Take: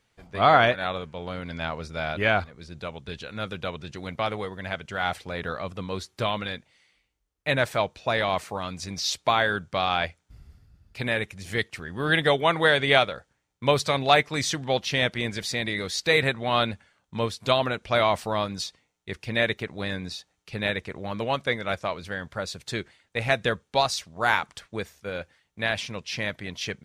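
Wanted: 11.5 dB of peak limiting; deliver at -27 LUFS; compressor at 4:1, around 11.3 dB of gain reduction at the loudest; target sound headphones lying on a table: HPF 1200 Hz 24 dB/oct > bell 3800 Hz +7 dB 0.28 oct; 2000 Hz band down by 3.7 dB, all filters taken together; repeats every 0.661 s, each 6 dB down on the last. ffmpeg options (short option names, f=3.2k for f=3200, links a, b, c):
-af "equalizer=f=2k:t=o:g=-4.5,acompressor=threshold=-28dB:ratio=4,alimiter=level_in=2.5dB:limit=-24dB:level=0:latency=1,volume=-2.5dB,highpass=f=1.2k:w=0.5412,highpass=f=1.2k:w=1.3066,equalizer=f=3.8k:t=o:w=0.28:g=7,aecho=1:1:661|1322|1983|2644|3305|3966:0.501|0.251|0.125|0.0626|0.0313|0.0157,volume=11.5dB"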